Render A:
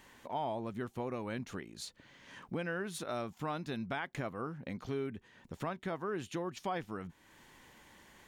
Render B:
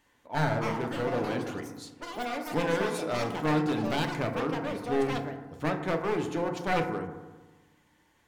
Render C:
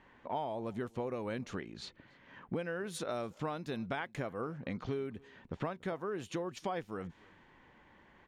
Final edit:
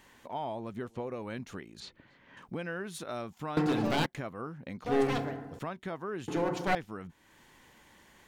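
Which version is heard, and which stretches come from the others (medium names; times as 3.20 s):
A
0.77–1.22 s: from C
1.80–2.37 s: from C
3.57–4.06 s: from B
4.86–5.59 s: from B
6.28–6.75 s: from B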